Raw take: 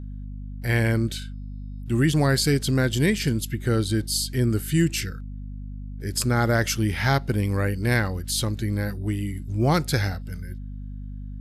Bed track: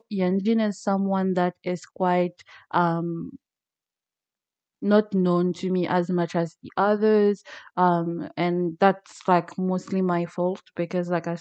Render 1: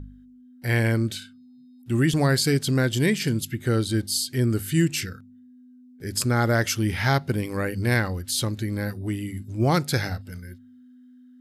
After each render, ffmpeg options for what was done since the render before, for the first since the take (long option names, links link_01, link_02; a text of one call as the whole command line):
ffmpeg -i in.wav -af "bandreject=frequency=50:width_type=h:width=4,bandreject=frequency=100:width_type=h:width=4,bandreject=frequency=150:width_type=h:width=4,bandreject=frequency=200:width_type=h:width=4" out.wav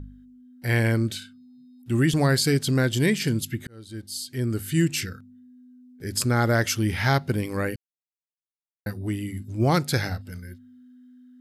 ffmpeg -i in.wav -filter_complex "[0:a]asplit=4[link_01][link_02][link_03][link_04];[link_01]atrim=end=3.67,asetpts=PTS-STARTPTS,afade=type=out:start_time=3.666:duration=0.004:curve=hsin[link_05];[link_02]atrim=start=3.67:end=7.76,asetpts=PTS-STARTPTS,afade=type=in:duration=1.24,afade=type=out:start_time=4.086:duration=0.004:curve=hsin[link_06];[link_03]atrim=start=7.76:end=8.86,asetpts=PTS-STARTPTS,volume=0[link_07];[link_04]atrim=start=8.86,asetpts=PTS-STARTPTS,afade=type=in:duration=0.004:curve=hsin[link_08];[link_05][link_06][link_07][link_08]concat=n=4:v=0:a=1" out.wav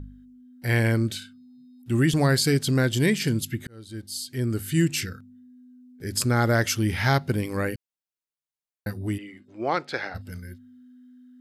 ffmpeg -i in.wav -filter_complex "[0:a]asplit=3[link_01][link_02][link_03];[link_01]afade=type=out:start_time=9.17:duration=0.02[link_04];[link_02]highpass=440,lowpass=2900,afade=type=in:start_time=9.17:duration=0.02,afade=type=out:start_time=10.14:duration=0.02[link_05];[link_03]afade=type=in:start_time=10.14:duration=0.02[link_06];[link_04][link_05][link_06]amix=inputs=3:normalize=0" out.wav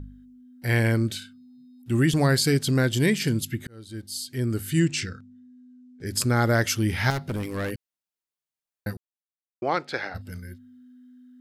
ffmpeg -i in.wav -filter_complex "[0:a]asettb=1/sr,asplit=3[link_01][link_02][link_03];[link_01]atrim=end=4.794[link_04];[link_02]atrim=start=4.79:end=6.06,asetpts=PTS-STARTPTS,afade=type=in:duration=0.004:curve=qsin,afade=type=out:start_time=1.266:duration=0.004:curve=qsin,lowpass=frequency=7900:width=0.5412,lowpass=frequency=7900:width=1.3066[link_05];[link_03]atrim=start=6.056[link_06];[link_04][link_05]acrossfade=duration=0.004:curve1=hsin:curve2=qsin[link_07];[link_07][link_06]acrossfade=duration=0.004:curve1=qsin:curve2=hsin,asettb=1/sr,asplit=3[link_08][link_09][link_10];[link_08]atrim=end=7.104[link_11];[link_09]atrim=start=7.1:end=7.71,asetpts=PTS-STARTPTS,afade=type=in:duration=0.004:curve=qsin,afade=type=out:start_time=0.606:duration=0.004:curve=qsin,asoftclip=type=hard:threshold=-25.5dB[link_12];[link_10]atrim=start=7.706[link_13];[link_11][link_12]acrossfade=duration=0.004:curve1=hsin:curve2=qsin[link_14];[link_14][link_13]acrossfade=duration=0.004:curve1=qsin:curve2=hsin,asplit=3[link_15][link_16][link_17];[link_15]atrim=end=8.97,asetpts=PTS-STARTPTS,afade=type=out:start_time=8.966:duration=0.004:curve=hsin[link_18];[link_16]atrim=start=8.97:end=9.62,asetpts=PTS-STARTPTS,volume=0[link_19];[link_17]atrim=start=9.62,asetpts=PTS-STARTPTS,afade=type=in:duration=0.004:curve=hsin[link_20];[link_18][link_19][link_20]concat=n=3:v=0:a=1" out.wav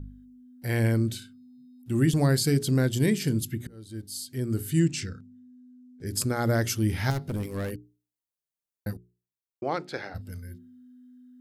ffmpeg -i in.wav -af "equalizer=frequency=2000:width=0.36:gain=-7.5,bandreject=frequency=60:width_type=h:width=6,bandreject=frequency=120:width_type=h:width=6,bandreject=frequency=180:width_type=h:width=6,bandreject=frequency=240:width_type=h:width=6,bandreject=frequency=300:width_type=h:width=6,bandreject=frequency=360:width_type=h:width=6,bandreject=frequency=420:width_type=h:width=6" out.wav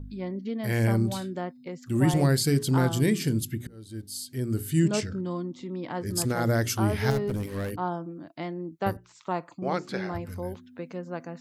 ffmpeg -i in.wav -i bed.wav -filter_complex "[1:a]volume=-10.5dB[link_01];[0:a][link_01]amix=inputs=2:normalize=0" out.wav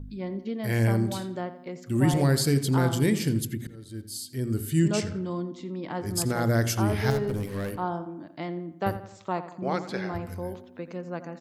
ffmpeg -i in.wav -filter_complex "[0:a]asplit=2[link_01][link_02];[link_02]adelay=86,lowpass=frequency=3200:poles=1,volume=-12.5dB,asplit=2[link_03][link_04];[link_04]adelay=86,lowpass=frequency=3200:poles=1,volume=0.49,asplit=2[link_05][link_06];[link_06]adelay=86,lowpass=frequency=3200:poles=1,volume=0.49,asplit=2[link_07][link_08];[link_08]adelay=86,lowpass=frequency=3200:poles=1,volume=0.49,asplit=2[link_09][link_10];[link_10]adelay=86,lowpass=frequency=3200:poles=1,volume=0.49[link_11];[link_01][link_03][link_05][link_07][link_09][link_11]amix=inputs=6:normalize=0" out.wav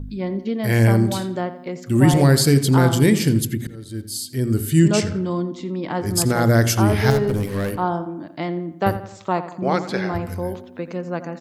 ffmpeg -i in.wav -af "volume=8dB" out.wav